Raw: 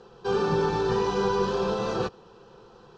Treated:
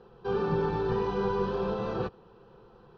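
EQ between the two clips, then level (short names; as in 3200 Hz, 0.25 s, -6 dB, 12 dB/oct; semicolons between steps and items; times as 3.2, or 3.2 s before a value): air absorption 240 m; low shelf 160 Hz +5 dB; -4.0 dB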